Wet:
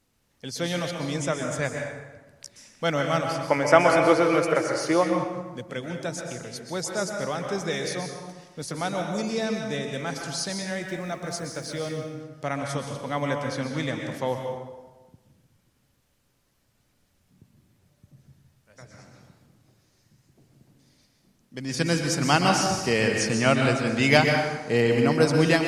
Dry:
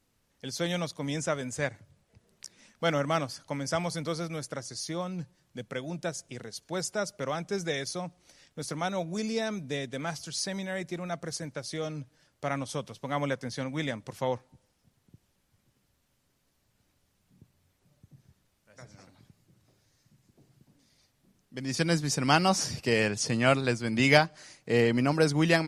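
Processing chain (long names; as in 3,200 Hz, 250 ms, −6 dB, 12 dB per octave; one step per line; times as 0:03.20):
0:03.38–0:05.03: gain on a spectral selection 280–3,100 Hz +12 dB
0:10.83–0:11.96: centre clipping without the shift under −53 dBFS
dense smooth reverb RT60 1.2 s, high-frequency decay 0.65×, pre-delay 110 ms, DRR 2.5 dB
level +2 dB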